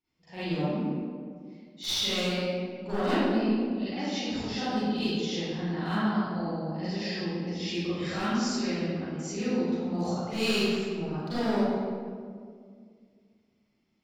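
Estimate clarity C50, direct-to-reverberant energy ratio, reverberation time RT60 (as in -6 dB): -8.5 dB, -15.0 dB, 2.0 s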